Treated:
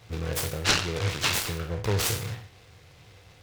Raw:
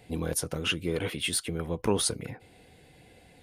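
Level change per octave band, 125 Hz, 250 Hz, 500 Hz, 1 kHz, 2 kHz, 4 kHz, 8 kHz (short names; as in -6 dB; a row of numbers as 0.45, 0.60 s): +6.0, -3.5, -1.0, +5.5, +6.0, +4.0, +1.0 dB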